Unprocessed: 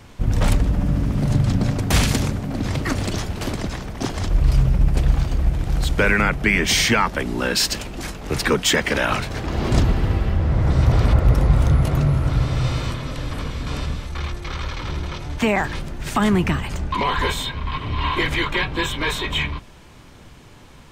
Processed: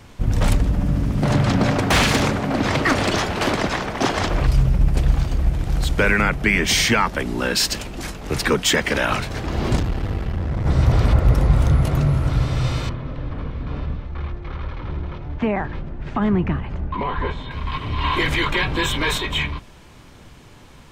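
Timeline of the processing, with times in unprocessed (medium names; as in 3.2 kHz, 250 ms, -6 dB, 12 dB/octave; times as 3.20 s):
1.23–4.47 s: overdrive pedal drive 20 dB, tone 2.1 kHz, clips at -5 dBFS
9.76–10.66 s: valve stage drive 16 dB, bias 0.7
12.89–17.51 s: tape spacing loss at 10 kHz 39 dB
18.04–19.18 s: level flattener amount 50%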